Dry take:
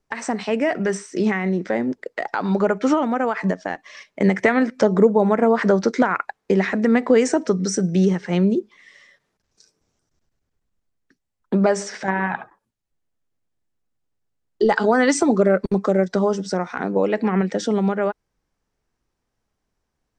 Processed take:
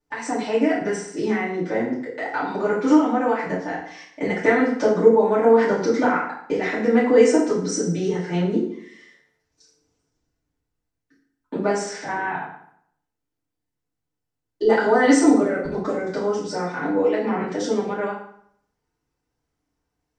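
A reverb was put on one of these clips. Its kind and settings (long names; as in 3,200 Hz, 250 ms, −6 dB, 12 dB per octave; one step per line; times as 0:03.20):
feedback delay network reverb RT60 0.67 s, low-frequency decay 1.05×, high-frequency decay 0.8×, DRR −9.5 dB
level −11 dB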